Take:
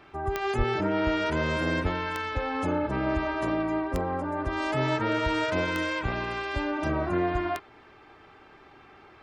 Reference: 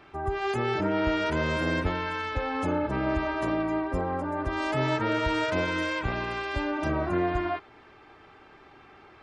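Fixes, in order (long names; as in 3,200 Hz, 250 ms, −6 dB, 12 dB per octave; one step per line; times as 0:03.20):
click removal
high-pass at the plosives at 0:00.57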